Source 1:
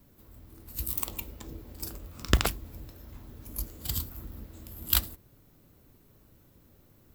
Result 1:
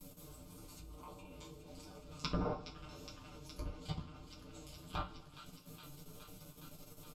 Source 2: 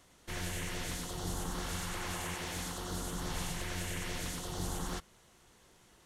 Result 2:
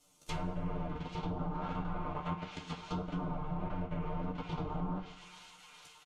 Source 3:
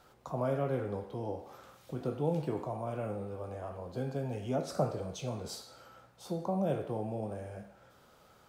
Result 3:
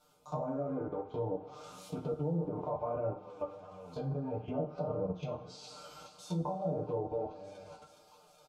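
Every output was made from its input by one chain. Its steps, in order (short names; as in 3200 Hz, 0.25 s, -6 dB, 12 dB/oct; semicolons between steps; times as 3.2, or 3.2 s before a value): spectral trails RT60 0.32 s; bell 1800 Hz -14 dB 0.36 oct; in parallel at -2 dB: compressor 5:1, threshold -41 dBFS; on the sum: treble ducked by the level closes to 1200 Hz, closed at -28 dBFS; high shelf 5000 Hz +9.5 dB; notches 50/100/150/200/250/300/350/400/450 Hz; comb 6.6 ms, depth 93%; level quantiser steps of 17 dB; on a send: thin delay 0.416 s, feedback 79%, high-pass 1500 Hz, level -11 dB; on the sum: flange 1.6 Hz, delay 9.9 ms, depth 3.7 ms, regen -5%; treble ducked by the level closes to 970 Hz, closed at -33.5 dBFS; two-slope reverb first 0.26 s, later 1.6 s, from -18 dB, DRR 2 dB; gain +1 dB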